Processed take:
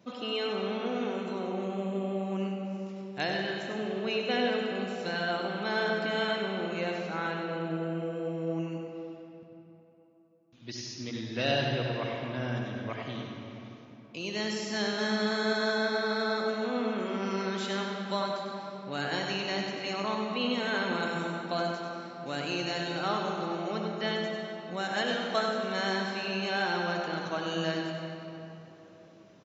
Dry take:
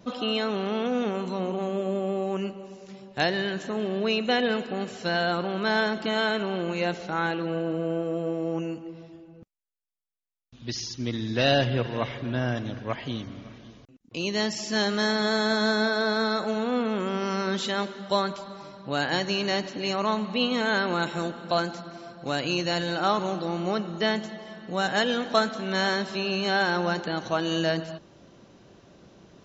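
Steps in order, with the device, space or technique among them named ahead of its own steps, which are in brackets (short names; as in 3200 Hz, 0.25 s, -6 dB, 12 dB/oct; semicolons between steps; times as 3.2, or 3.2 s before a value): PA in a hall (HPF 120 Hz; bell 2300 Hz +4 dB 0.44 oct; echo 98 ms -6.5 dB; reverb RT60 3.3 s, pre-delay 56 ms, DRR 2.5 dB); gain -8 dB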